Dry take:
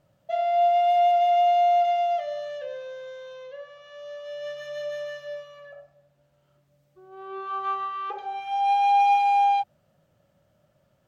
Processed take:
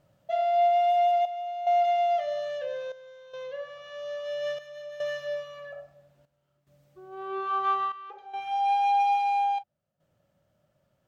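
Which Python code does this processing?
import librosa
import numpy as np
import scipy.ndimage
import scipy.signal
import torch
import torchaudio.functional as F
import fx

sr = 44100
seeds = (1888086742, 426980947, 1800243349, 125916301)

p1 = fx.step_gate(x, sr, bpm=72, pattern='xxxxxx..', floor_db=-12.0, edge_ms=4.5)
p2 = 10.0 ** (-21.5 / 20.0) * np.tanh(p1 / 10.0 ** (-21.5 / 20.0))
p3 = p1 + F.gain(torch.from_numpy(p2), -8.0).numpy()
p4 = fx.rider(p3, sr, range_db=5, speed_s=2.0)
y = F.gain(torch.from_numpy(p4), -4.5).numpy()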